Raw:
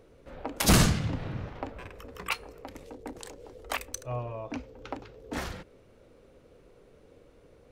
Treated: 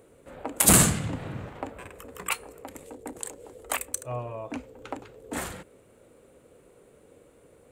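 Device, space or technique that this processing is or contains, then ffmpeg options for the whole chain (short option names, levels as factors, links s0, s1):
budget condenser microphone: -af "highpass=f=120:p=1,highshelf=f=6600:t=q:w=3:g=6.5,volume=1.26"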